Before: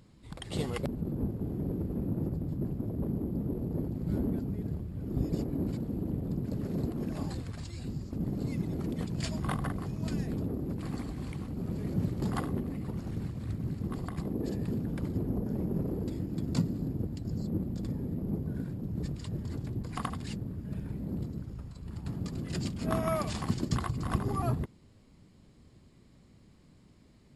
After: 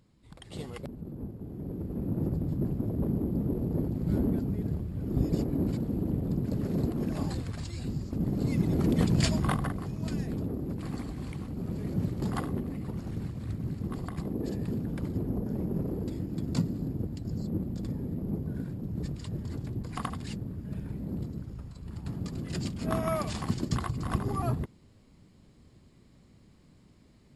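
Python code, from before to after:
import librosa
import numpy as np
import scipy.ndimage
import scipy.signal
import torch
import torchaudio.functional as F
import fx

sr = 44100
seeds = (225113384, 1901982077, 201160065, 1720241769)

y = fx.gain(x, sr, db=fx.line((1.46, -6.5), (2.31, 3.5), (8.3, 3.5), (9.11, 10.5), (9.75, 0.5)))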